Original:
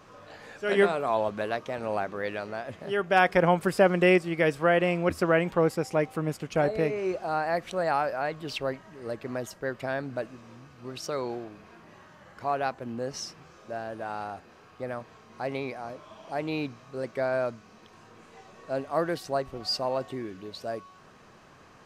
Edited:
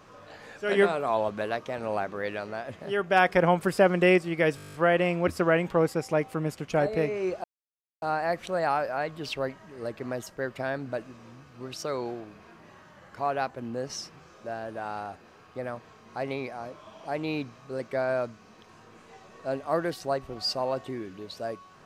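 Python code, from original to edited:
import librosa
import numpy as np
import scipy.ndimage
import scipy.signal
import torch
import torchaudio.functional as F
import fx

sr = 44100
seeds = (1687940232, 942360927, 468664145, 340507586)

y = fx.edit(x, sr, fx.stutter(start_s=4.56, slice_s=0.02, count=10),
    fx.insert_silence(at_s=7.26, length_s=0.58), tone=tone)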